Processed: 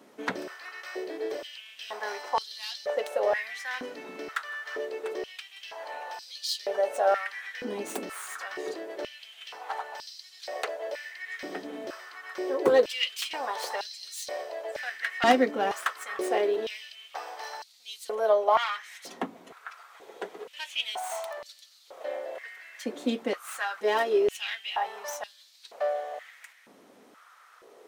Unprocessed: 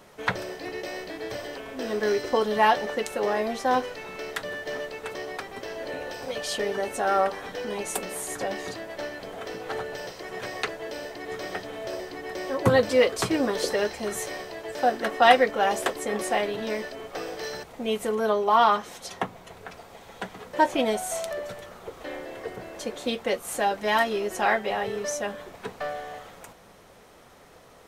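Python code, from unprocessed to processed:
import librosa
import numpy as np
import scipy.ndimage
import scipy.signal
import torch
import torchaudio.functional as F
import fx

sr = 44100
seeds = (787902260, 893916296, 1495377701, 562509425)

y = fx.tracing_dist(x, sr, depth_ms=0.11)
y = fx.filter_held_highpass(y, sr, hz=2.1, low_hz=260.0, high_hz=4300.0)
y = F.gain(torch.from_numpy(y), -6.0).numpy()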